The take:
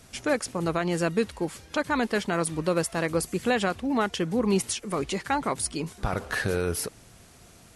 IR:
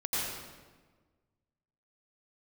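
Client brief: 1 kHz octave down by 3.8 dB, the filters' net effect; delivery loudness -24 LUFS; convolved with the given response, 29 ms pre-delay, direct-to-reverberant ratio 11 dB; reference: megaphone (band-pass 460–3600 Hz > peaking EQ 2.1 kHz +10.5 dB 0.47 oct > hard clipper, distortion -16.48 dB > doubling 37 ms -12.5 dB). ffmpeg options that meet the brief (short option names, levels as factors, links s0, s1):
-filter_complex "[0:a]equalizer=f=1000:t=o:g=-5.5,asplit=2[s0][s1];[1:a]atrim=start_sample=2205,adelay=29[s2];[s1][s2]afir=irnorm=-1:irlink=0,volume=0.126[s3];[s0][s3]amix=inputs=2:normalize=0,highpass=460,lowpass=3600,equalizer=f=2100:t=o:w=0.47:g=10.5,asoftclip=type=hard:threshold=0.106,asplit=2[s4][s5];[s5]adelay=37,volume=0.237[s6];[s4][s6]amix=inputs=2:normalize=0,volume=2.24"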